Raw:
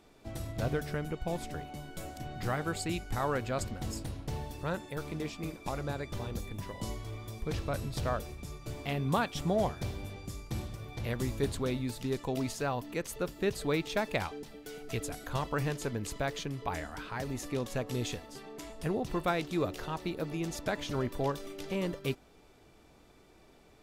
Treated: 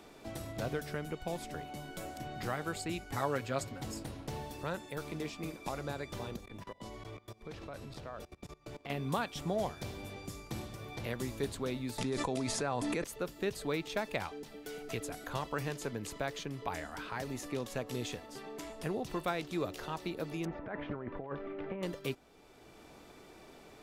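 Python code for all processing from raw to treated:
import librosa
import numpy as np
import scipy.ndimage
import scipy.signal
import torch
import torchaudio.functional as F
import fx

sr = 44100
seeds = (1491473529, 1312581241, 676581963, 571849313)

y = fx.chain(x, sr, fx.highpass(hz=53.0, slope=12),
    fx.comb(ms=7.2, depth=0.73), at=(3.11, 3.84))
y = fx.chain(y, sr, fx.lowpass(hz=2900.0, slope=6),
    fx.peak_eq(hz=140.0, db=-2.5, octaves=2.5),
    fx.level_steps(step_db=22), at=(6.36, 8.9))
y = fx.chain(y, sr, fx.resample_bad(factor=2, down='none', up='filtered'),
    fx.notch(hz=2900.0, q=13.0),
    fx.env_flatten(amount_pct=100), at=(11.98, 13.04))
y = fx.chain(y, sr, fx.lowpass(hz=1900.0, slope=24),
    fx.over_compress(threshold_db=-35.0, ratio=-0.5), at=(20.45, 21.83))
y = fx.low_shelf(y, sr, hz=130.0, db=-8.0)
y = fx.band_squash(y, sr, depth_pct=40)
y = F.gain(torch.from_numpy(y), -2.5).numpy()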